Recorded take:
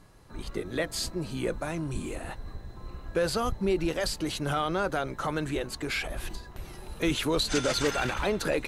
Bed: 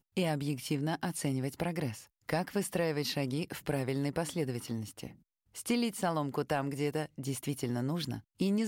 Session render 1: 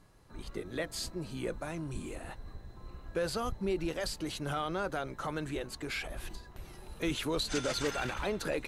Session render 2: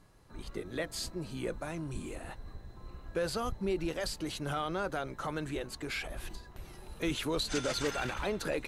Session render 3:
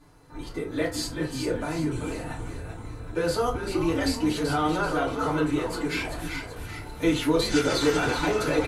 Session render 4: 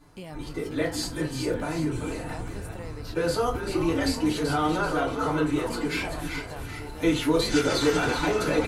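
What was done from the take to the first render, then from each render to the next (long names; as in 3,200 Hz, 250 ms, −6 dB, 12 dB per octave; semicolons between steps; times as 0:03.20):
level −6 dB
no processing that can be heard
echo with shifted repeats 385 ms, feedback 48%, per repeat −120 Hz, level −6 dB; feedback delay network reverb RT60 0.39 s, low-frequency decay 0.75×, high-frequency decay 0.55×, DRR −7 dB
mix in bed −10 dB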